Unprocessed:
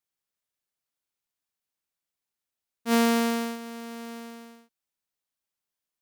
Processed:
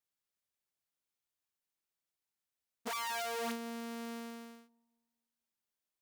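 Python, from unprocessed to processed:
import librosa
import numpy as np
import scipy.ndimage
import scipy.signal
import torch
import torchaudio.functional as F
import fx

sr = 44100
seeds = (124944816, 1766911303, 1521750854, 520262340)

y = (np.mod(10.0 ** (29.0 / 20.0) * x + 1.0, 2.0) - 1.0) / 10.0 ** (29.0 / 20.0)
y = fx.echo_wet_lowpass(y, sr, ms=236, feedback_pct=33, hz=630.0, wet_db=-20.0)
y = F.gain(torch.from_numpy(y), -4.0).numpy()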